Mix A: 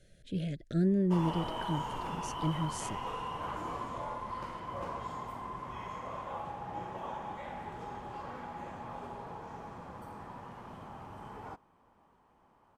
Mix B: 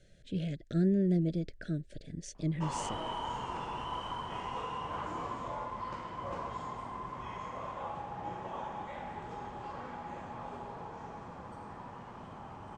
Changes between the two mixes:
background: entry +1.50 s; master: add steep low-pass 8.7 kHz 36 dB/octave

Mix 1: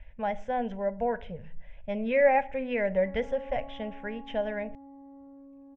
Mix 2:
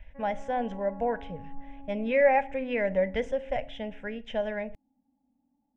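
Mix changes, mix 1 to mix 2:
background: entry -2.90 s; master: remove distance through air 87 m

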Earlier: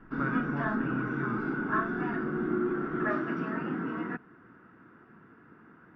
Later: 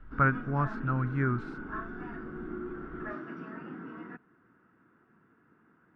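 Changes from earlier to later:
speech +9.5 dB; background -9.5 dB

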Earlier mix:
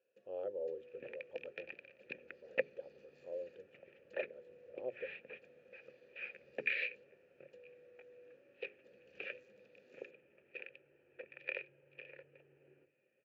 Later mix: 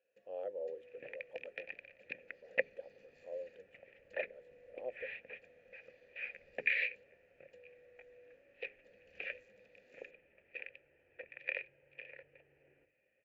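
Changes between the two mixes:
speech: add high-pass 190 Hz 12 dB/octave; master: remove cabinet simulation 120–7000 Hz, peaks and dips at 140 Hz +6 dB, 230 Hz +3 dB, 370 Hz +8 dB, 700 Hz -4 dB, 1.3 kHz +4 dB, 2 kHz -9 dB

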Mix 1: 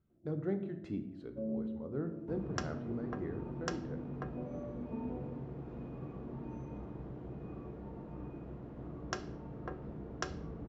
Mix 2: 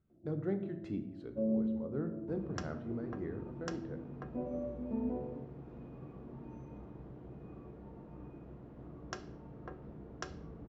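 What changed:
first sound +5.5 dB; second sound -4.5 dB

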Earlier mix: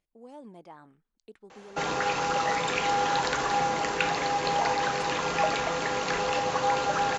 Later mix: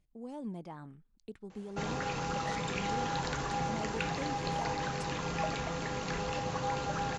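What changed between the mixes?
background -9.5 dB; master: add tone controls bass +14 dB, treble +2 dB

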